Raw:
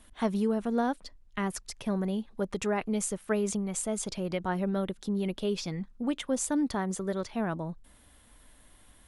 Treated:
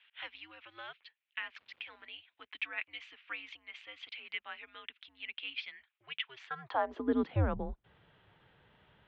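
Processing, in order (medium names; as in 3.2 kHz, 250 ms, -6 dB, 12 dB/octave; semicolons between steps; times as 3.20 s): high-pass sweep 2.5 kHz -> 150 Hz, 6.34–7.57 s; 1.58–2.05 s: crackle 570 per s -52 dBFS; mistuned SSB -130 Hz 220–3500 Hz; trim -1.5 dB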